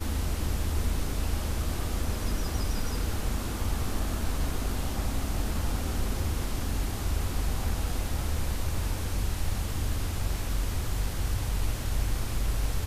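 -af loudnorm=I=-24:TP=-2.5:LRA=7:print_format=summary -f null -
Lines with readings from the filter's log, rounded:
Input Integrated:    -32.0 LUFS
Input True Peak:     -15.6 dBTP
Input LRA:             0.3 LU
Input Threshold:     -42.0 LUFS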